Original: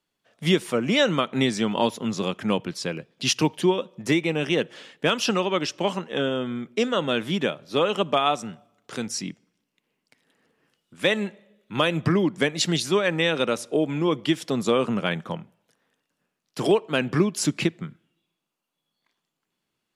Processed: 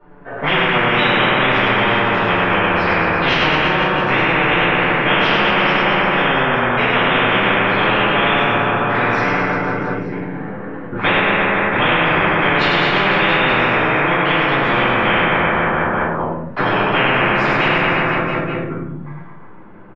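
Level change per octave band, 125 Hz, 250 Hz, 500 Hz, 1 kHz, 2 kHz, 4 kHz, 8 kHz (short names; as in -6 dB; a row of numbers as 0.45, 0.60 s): +7.5 dB, +4.5 dB, +6.0 dB, +15.0 dB, +16.5 dB, +8.0 dB, under -15 dB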